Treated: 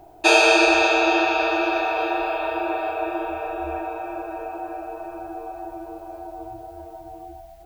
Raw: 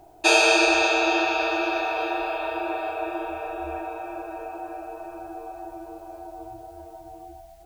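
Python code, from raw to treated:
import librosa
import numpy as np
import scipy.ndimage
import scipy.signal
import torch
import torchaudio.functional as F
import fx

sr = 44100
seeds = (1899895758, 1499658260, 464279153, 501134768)

y = fx.peak_eq(x, sr, hz=7800.0, db=-5.0, octaves=1.9)
y = y * librosa.db_to_amplitude(3.5)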